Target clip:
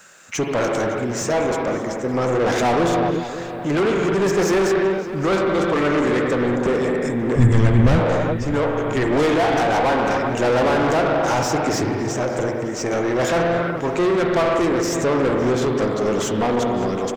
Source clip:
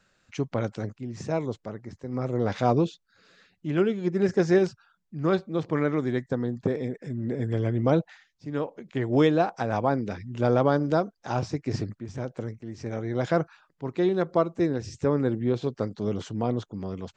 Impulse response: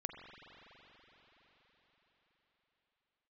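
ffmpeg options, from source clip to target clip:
-filter_complex "[0:a]aexciter=amount=6.1:drive=6.2:freq=6100[link_01];[1:a]atrim=start_sample=2205,afade=type=out:start_time=0.44:duration=0.01,atrim=end_sample=19845[link_02];[link_01][link_02]afir=irnorm=-1:irlink=0,asplit=2[link_03][link_04];[link_04]highpass=frequency=720:poles=1,volume=30dB,asoftclip=type=tanh:threshold=-11dB[link_05];[link_03][link_05]amix=inputs=2:normalize=0,lowpass=frequency=2900:poles=1,volume=-6dB,asplit=3[link_06][link_07][link_08];[link_06]afade=type=out:start_time=7.35:duration=0.02[link_09];[link_07]asubboost=boost=11.5:cutoff=120,afade=type=in:start_time=7.35:duration=0.02,afade=type=out:start_time=7.98:duration=0.02[link_10];[link_08]afade=type=in:start_time=7.98:duration=0.02[link_11];[link_09][link_10][link_11]amix=inputs=3:normalize=0,asplit=2[link_12][link_13];[link_13]adelay=561,lowpass=frequency=2800:poles=1,volume=-12dB,asplit=2[link_14][link_15];[link_15]adelay=561,lowpass=frequency=2800:poles=1,volume=0.55,asplit=2[link_16][link_17];[link_17]adelay=561,lowpass=frequency=2800:poles=1,volume=0.55,asplit=2[link_18][link_19];[link_19]adelay=561,lowpass=frequency=2800:poles=1,volume=0.55,asplit=2[link_20][link_21];[link_21]adelay=561,lowpass=frequency=2800:poles=1,volume=0.55,asplit=2[link_22][link_23];[link_23]adelay=561,lowpass=frequency=2800:poles=1,volume=0.55[link_24];[link_12][link_14][link_16][link_18][link_20][link_22][link_24]amix=inputs=7:normalize=0"

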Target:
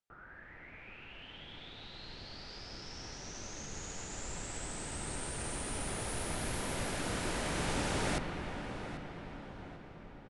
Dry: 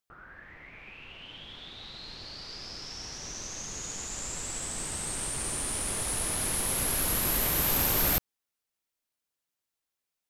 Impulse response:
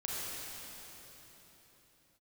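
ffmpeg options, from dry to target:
-filter_complex "[0:a]highshelf=frequency=5700:gain=-7,bandreject=frequency=1100:width=11,acrossover=split=110|4500[link_01][link_02][link_03];[link_01]alimiter=level_in=13dB:limit=-24dB:level=0:latency=1,volume=-13dB[link_04];[link_04][link_02][link_03]amix=inputs=3:normalize=0,asplit=2[link_05][link_06];[link_06]adelay=791,lowpass=frequency=2200:poles=1,volume=-10dB,asplit=2[link_07][link_08];[link_08]adelay=791,lowpass=frequency=2200:poles=1,volume=0.51,asplit=2[link_09][link_10];[link_10]adelay=791,lowpass=frequency=2200:poles=1,volume=0.51,asplit=2[link_11][link_12];[link_12]adelay=791,lowpass=frequency=2200:poles=1,volume=0.51,asplit=2[link_13][link_14];[link_14]adelay=791,lowpass=frequency=2200:poles=1,volume=0.51,asplit=2[link_15][link_16];[link_16]adelay=791,lowpass=frequency=2200:poles=1,volume=0.51[link_17];[link_05][link_07][link_09][link_11][link_13][link_15][link_17]amix=inputs=7:normalize=0,asplit=2[link_18][link_19];[1:a]atrim=start_sample=2205,asetrate=27783,aresample=44100,lowpass=2700[link_20];[link_19][link_20]afir=irnorm=-1:irlink=0,volume=-10dB[link_21];[link_18][link_21]amix=inputs=2:normalize=0,aresample=22050,aresample=44100,volume=-4.5dB"

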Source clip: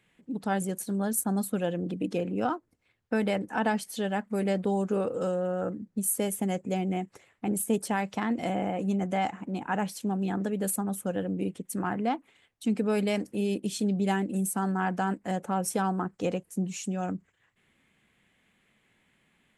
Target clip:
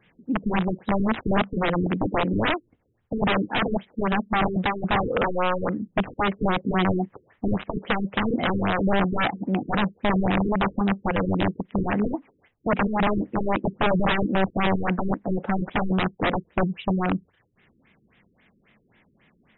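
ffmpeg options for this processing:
ffmpeg -i in.wav -af "aeval=exprs='(mod(15.8*val(0)+1,2)-1)/15.8':channel_layout=same,afftfilt=real='re*lt(b*sr/1024,450*pow(4000/450,0.5+0.5*sin(2*PI*3.7*pts/sr)))':imag='im*lt(b*sr/1024,450*pow(4000/450,0.5+0.5*sin(2*PI*3.7*pts/sr)))':win_size=1024:overlap=0.75,volume=9dB" out.wav

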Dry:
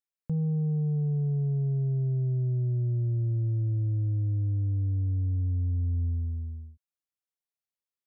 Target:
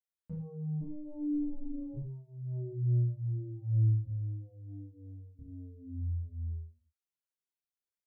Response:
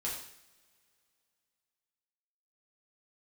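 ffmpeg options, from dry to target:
-filter_complex "[0:a]asplit=3[link_01][link_02][link_03];[link_01]afade=type=out:start_time=0.8:duration=0.02[link_04];[link_02]aeval=exprs='val(0)*sin(2*PI*150*n/s)':channel_layout=same,afade=type=in:start_time=0.8:duration=0.02,afade=type=out:start_time=1.93:duration=0.02[link_05];[link_03]afade=type=in:start_time=1.93:duration=0.02[link_06];[link_04][link_05][link_06]amix=inputs=3:normalize=0,asettb=1/sr,asplit=3[link_07][link_08][link_09];[link_07]atrim=end=4.064[link_10];[link_08]atrim=start=4.06:end=5.39,asetpts=PTS-STARTPTS,afade=type=in:duration=0.004:curve=qsin,afade=type=out:start_time=1.326:duration=0.004:curve=qsin,equalizer=frequency=83:width=0.58:gain=-7[link_11];[link_09]atrim=start=5.386[link_12];[link_10][link_11]acrossfade=duration=0.004:curve1=hsin:curve2=qsin[link_13];[link_13][link_12]acrossfade=duration=0.004:curve1=qsin:curve2=hsin,asplit=2[link_14][link_15];[link_15]adelay=27,volume=-3dB[link_16];[link_14][link_16]amix=inputs=2:normalize=0[link_17];[1:a]atrim=start_sample=2205,afade=type=out:start_time=0.17:duration=0.01,atrim=end_sample=7938[link_18];[link_17][link_18]afir=irnorm=-1:irlink=0,asplit=2[link_19][link_20];[link_20]adelay=6.9,afreqshift=2.1[link_21];[link_19][link_21]amix=inputs=2:normalize=1,volume=-6.5dB"

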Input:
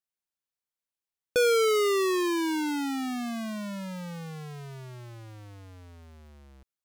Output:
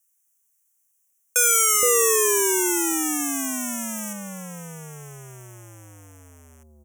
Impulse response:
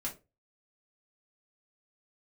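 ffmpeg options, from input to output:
-filter_complex "[0:a]asetnsamples=nb_out_samples=441:pad=0,asendcmd='4.13 highshelf g 5',highshelf=frequency=2400:gain=11.5,asplit=2[link_01][link_02];[link_02]highpass=frequency=720:poles=1,volume=7dB,asoftclip=type=tanh:threshold=-7.5dB[link_03];[link_01][link_03]amix=inputs=2:normalize=0,lowpass=frequency=1400:poles=1,volume=-6dB,aexciter=amount=13.8:drive=2.7:freq=5400,asuperstop=centerf=4400:order=8:qfactor=2,acrossover=split=630[link_04][link_05];[link_04]adelay=470[link_06];[link_06][link_05]amix=inputs=2:normalize=0,volume=4dB"

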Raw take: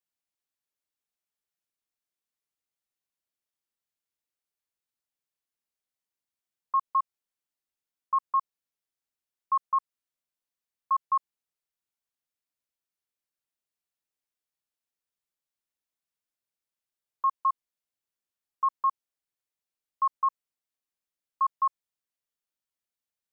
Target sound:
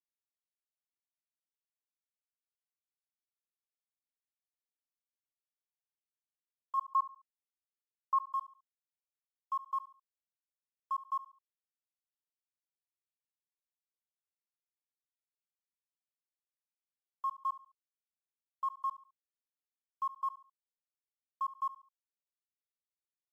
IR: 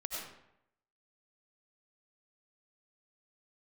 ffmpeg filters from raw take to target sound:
-filter_complex "[0:a]lowpass=frequency=1100:width=0.5412,lowpass=frequency=1100:width=1.3066,bandreject=frequency=60:width_type=h:width=6,bandreject=frequency=120:width_type=h:width=6,bandreject=frequency=180:width_type=h:width=6,bandreject=frequency=240:width_type=h:width=6,bandreject=frequency=300:width_type=h:width=6,bandreject=frequency=360:width_type=h:width=6,bandreject=frequency=420:width_type=h:width=6,bandreject=frequency=480:width_type=h:width=6,bandreject=frequency=540:width_type=h:width=6,asplit=3[link_01][link_02][link_03];[link_01]afade=type=out:start_time=6.77:duration=0.02[link_04];[link_02]acontrast=36,afade=type=in:start_time=6.77:duration=0.02,afade=type=out:start_time=8.25:duration=0.02[link_05];[link_03]afade=type=in:start_time=8.25:duration=0.02[link_06];[link_04][link_05][link_06]amix=inputs=3:normalize=0,asettb=1/sr,asplit=3[link_07][link_08][link_09];[link_07]atrim=end=17.404[link_10];[link_08]atrim=start=17.4:end=18.82,asetpts=PTS-STARTPTS,afade=type=in:duration=0.004:curve=qsin,afade=type=out:start_time=1.416:duration=0.004:curve=qsin,adynamicequalizer=threshold=0.00316:dfrequency=800:dqfactor=5.4:tfrequency=800:tqfactor=5.4:attack=5:release=100:ratio=0.375:range=3.5:mode=boostabove:tftype=bell[link_11];[link_09]atrim=start=18.816[link_12];[link_10][link_11]acrossfade=duration=0.004:curve1=hsin:curve2=qsin[link_13];[link_13][link_12]acrossfade=duration=0.004:curve1=qsin:curve2=hsin,aeval=exprs='sgn(val(0))*max(abs(val(0))-0.00168,0)':channel_layout=same,acrusher=bits=9:mix=0:aa=0.000001,aecho=1:1:70|140|210:0.15|0.0509|0.0173,volume=-6.5dB" -ar 32000 -c:a libmp3lame -b:a 80k

